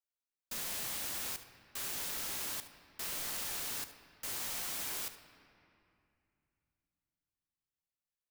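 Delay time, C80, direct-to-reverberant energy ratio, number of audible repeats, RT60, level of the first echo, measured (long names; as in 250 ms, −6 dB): 74 ms, 13.0 dB, 9.0 dB, 1, 2.6 s, −15.0 dB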